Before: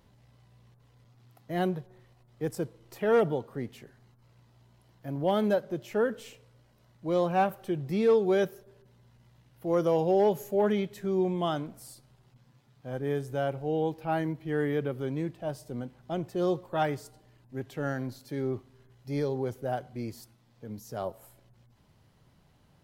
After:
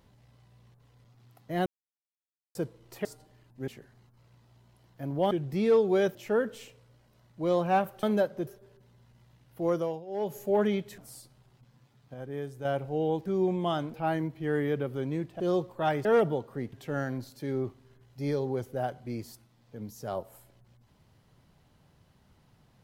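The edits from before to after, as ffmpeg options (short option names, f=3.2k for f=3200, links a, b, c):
-filter_complex "[0:a]asplit=19[a][b][c][d][e][f][g][h][i][j][k][l][m][n][o][p][q][r][s];[a]atrim=end=1.66,asetpts=PTS-STARTPTS,afade=t=out:st=1.656:d=0.004:c=hsin[t];[b]atrim=start=1.66:end=2.55,asetpts=PTS-STARTPTS,volume=0[u];[c]atrim=start=2.55:end=3.052,asetpts=PTS-STARTPTS,afade=t=in:d=0.004:c=hsin[v];[d]atrim=start=16.988:end=17.622[w];[e]atrim=start=3.728:end=5.362[x];[f]atrim=start=7.678:end=8.522[y];[g]atrim=start=5.798:end=7.682[z];[h]atrim=start=5.358:end=5.802[aa];[i]atrim=start=8.518:end=10.1,asetpts=PTS-STARTPTS,afade=t=out:st=1.172:d=0.41:silence=0.0749894[ab];[j]atrim=start=10.1:end=10.11,asetpts=PTS-STARTPTS,volume=-22.5dB[ac];[k]atrim=start=10.11:end=11.032,asetpts=PTS-STARTPTS,afade=t=in:d=0.41:silence=0.0749894[ad];[l]atrim=start=11.708:end=12.872[ae];[m]atrim=start=12.868:end=13.382,asetpts=PTS-STARTPTS,volume=-6dB[af];[n]atrim=start=13.378:end=13.992[ag];[o]atrim=start=11.028:end=11.712[ah];[p]atrim=start=13.988:end=15.452[ai];[q]atrim=start=16.338:end=16.992[aj];[r]atrim=start=3.048:end=3.732[ak];[s]atrim=start=17.618[al];[t][u][v]concat=n=3:v=0:a=1[am];[am][w]acrossfade=d=0.004:c1=hsin:c2=hsin[an];[an][x]acrossfade=d=0.004:c1=hsin:c2=hsin[ao];[ao][y]acrossfade=d=0.004:c1=hsin:c2=hsin[ap];[ap][z]acrossfade=d=0.004:c1=hsin:c2=hsin[aq];[aq][aa]acrossfade=d=0.004:c1=hsin:c2=hsin[ar];[ab][ac][ad]concat=n=3:v=0:a=1[as];[ar][as]acrossfade=d=0.004:c1=hsin:c2=hsin[at];[at][ae]acrossfade=d=0.004:c1=hsin:c2=hsin[au];[au][af]acrossfade=d=0.004:c1=hsin:c2=hsin[av];[av][ag]acrossfade=d=0.004:c1=hsin:c2=hsin[aw];[aw][ah]acrossfade=d=0.004:c1=hsin:c2=hsin[ax];[ax][ai]acrossfade=d=0.004:c1=hsin:c2=hsin[ay];[ay][aj]acrossfade=d=0.004:c1=hsin:c2=hsin[az];[az][ak]acrossfade=d=0.004:c1=hsin:c2=hsin[ba];[ba][al]acrossfade=d=0.004:c1=hsin:c2=hsin"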